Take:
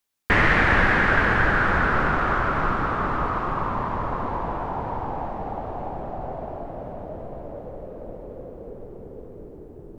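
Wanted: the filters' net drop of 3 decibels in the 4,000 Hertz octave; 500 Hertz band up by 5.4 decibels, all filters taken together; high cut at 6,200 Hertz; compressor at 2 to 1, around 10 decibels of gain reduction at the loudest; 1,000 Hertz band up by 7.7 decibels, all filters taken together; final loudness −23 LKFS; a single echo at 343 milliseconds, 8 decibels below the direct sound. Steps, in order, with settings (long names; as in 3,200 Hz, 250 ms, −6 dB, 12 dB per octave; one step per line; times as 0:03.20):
low-pass filter 6,200 Hz
parametric band 500 Hz +4 dB
parametric band 1,000 Hz +9 dB
parametric band 4,000 Hz −5 dB
downward compressor 2 to 1, threshold −30 dBFS
single-tap delay 343 ms −8 dB
level +4.5 dB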